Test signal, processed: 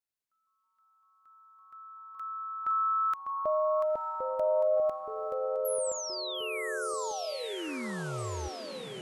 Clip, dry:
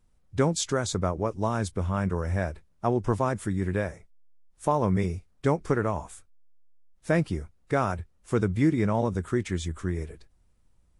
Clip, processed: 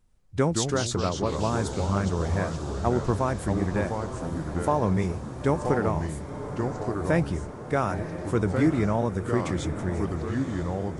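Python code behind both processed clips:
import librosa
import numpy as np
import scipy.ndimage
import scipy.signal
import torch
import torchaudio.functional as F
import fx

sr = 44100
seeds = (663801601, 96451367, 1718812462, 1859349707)

y = fx.echo_diffused(x, sr, ms=946, feedback_pct=60, wet_db=-11.0)
y = fx.echo_pitch(y, sr, ms=95, semitones=-3, count=3, db_per_echo=-6.0)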